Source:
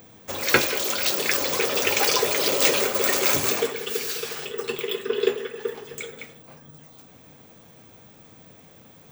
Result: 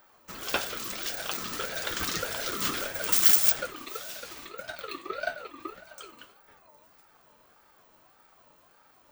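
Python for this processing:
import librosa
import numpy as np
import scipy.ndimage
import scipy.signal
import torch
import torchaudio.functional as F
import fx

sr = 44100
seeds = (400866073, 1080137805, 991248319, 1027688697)

y = fx.tilt_eq(x, sr, slope=3.5, at=(3.12, 3.52))
y = fx.ring_lfo(y, sr, carrier_hz=910.0, swing_pct=20, hz=1.7)
y = y * 10.0 ** (-7.5 / 20.0)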